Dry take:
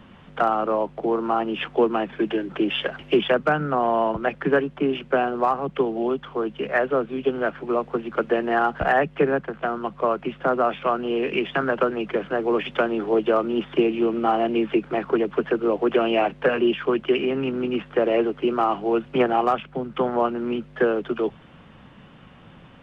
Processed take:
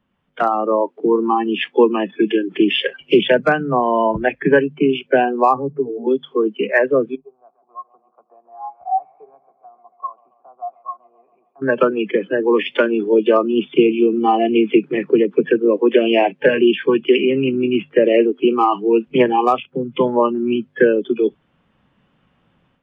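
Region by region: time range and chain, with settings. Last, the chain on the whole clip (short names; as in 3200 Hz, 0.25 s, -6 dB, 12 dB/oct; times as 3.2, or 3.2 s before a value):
5.55–6.07 comb 7.1 ms, depth 94% + compressor 2.5:1, threshold -25 dBFS + Gaussian blur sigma 6.8 samples
7.15–11.62 vocal tract filter a + high shelf 2400 Hz -6 dB + tape echo 0.137 s, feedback 75%, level -12 dB, low-pass 2500 Hz
whole clip: spectral noise reduction 22 dB; notches 50/100/150 Hz; AGC gain up to 9.5 dB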